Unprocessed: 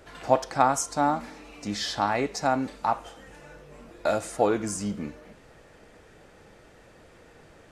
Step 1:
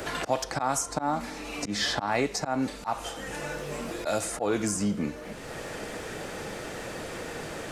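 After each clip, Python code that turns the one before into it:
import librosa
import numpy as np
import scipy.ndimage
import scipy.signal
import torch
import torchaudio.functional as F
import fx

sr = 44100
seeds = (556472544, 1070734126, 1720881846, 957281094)

y = fx.high_shelf(x, sr, hz=7000.0, db=5.0)
y = fx.auto_swell(y, sr, attack_ms=193.0)
y = fx.band_squash(y, sr, depth_pct=70)
y = F.gain(torch.from_numpy(y), 3.5).numpy()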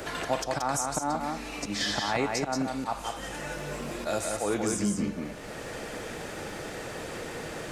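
y = x + 10.0 ** (-4.0 / 20.0) * np.pad(x, (int(179 * sr / 1000.0), 0))[:len(x)]
y = F.gain(torch.from_numpy(y), -2.0).numpy()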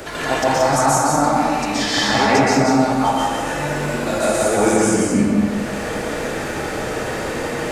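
y = fx.rev_plate(x, sr, seeds[0], rt60_s=1.8, hf_ratio=0.45, predelay_ms=110, drr_db=-7.5)
y = F.gain(torch.from_numpy(y), 5.0).numpy()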